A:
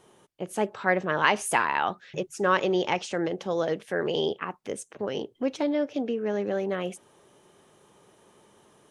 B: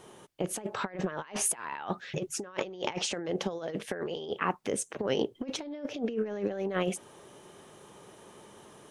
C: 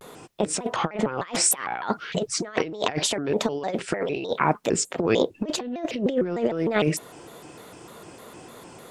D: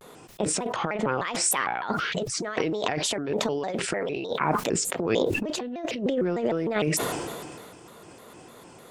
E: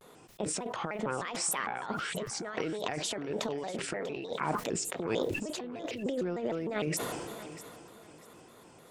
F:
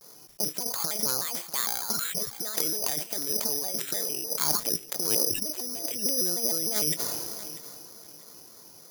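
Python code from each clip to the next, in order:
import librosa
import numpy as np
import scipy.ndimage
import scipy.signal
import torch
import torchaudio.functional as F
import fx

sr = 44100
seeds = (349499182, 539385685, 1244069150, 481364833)

y1 = fx.over_compress(x, sr, threshold_db=-32.0, ratio=-0.5)
y2 = fx.vibrato_shape(y1, sr, shape='square', rate_hz=3.3, depth_cents=250.0)
y2 = y2 * librosa.db_to_amplitude(8.0)
y3 = fx.sustainer(y2, sr, db_per_s=28.0)
y3 = y3 * librosa.db_to_amplitude(-4.0)
y4 = fx.echo_feedback(y3, sr, ms=642, feedback_pct=26, wet_db=-15)
y4 = y4 * librosa.db_to_amplitude(-7.5)
y5 = (np.kron(scipy.signal.resample_poly(y4, 1, 8), np.eye(8)[0]) * 8)[:len(y4)]
y5 = y5 * librosa.db_to_amplitude(-3.0)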